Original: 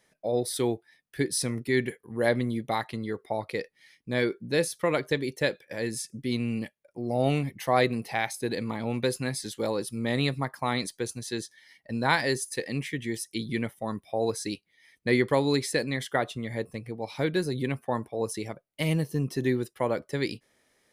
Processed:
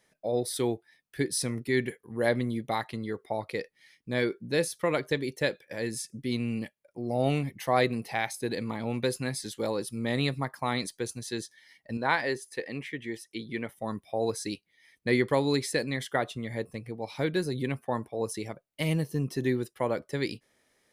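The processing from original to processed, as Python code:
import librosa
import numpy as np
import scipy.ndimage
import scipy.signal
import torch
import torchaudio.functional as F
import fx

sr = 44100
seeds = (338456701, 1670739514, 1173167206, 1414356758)

y = fx.bass_treble(x, sr, bass_db=-8, treble_db=-11, at=(11.97, 13.69))
y = y * librosa.db_to_amplitude(-1.5)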